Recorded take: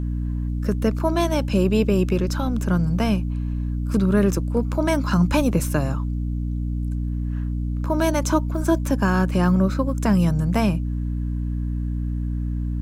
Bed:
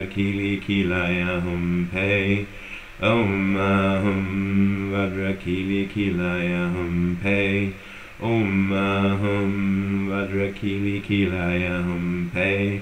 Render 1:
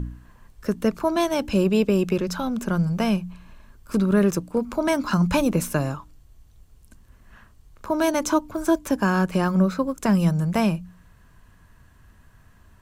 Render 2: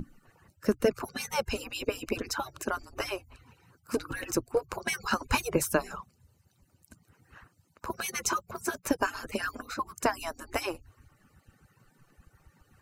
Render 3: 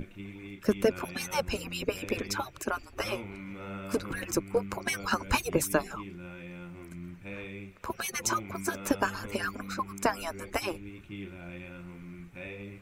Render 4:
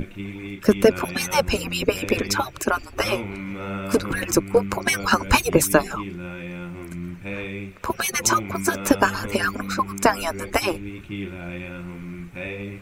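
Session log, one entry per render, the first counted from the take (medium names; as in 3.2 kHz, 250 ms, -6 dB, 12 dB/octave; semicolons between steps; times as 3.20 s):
de-hum 60 Hz, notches 5
harmonic-percussive separation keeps percussive; band-stop 3.4 kHz, Q 6.6
add bed -20.5 dB
trim +10 dB; peak limiter -2 dBFS, peak gain reduction 1 dB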